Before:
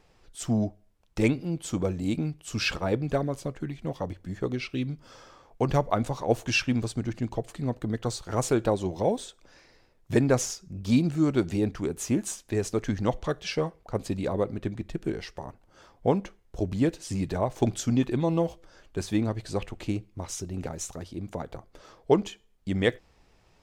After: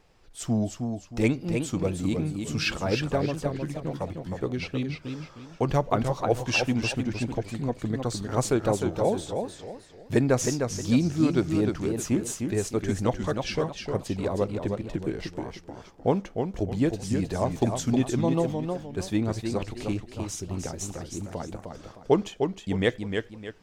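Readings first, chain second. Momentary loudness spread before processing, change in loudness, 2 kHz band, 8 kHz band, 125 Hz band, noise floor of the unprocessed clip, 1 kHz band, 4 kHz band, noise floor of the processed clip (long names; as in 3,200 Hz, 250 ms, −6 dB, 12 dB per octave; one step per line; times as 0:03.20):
11 LU, +1.0 dB, +1.0 dB, +1.0 dB, +1.0 dB, −62 dBFS, +1.5 dB, +1.5 dB, −50 dBFS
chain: feedback echo with a swinging delay time 309 ms, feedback 33%, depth 134 cents, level −5.5 dB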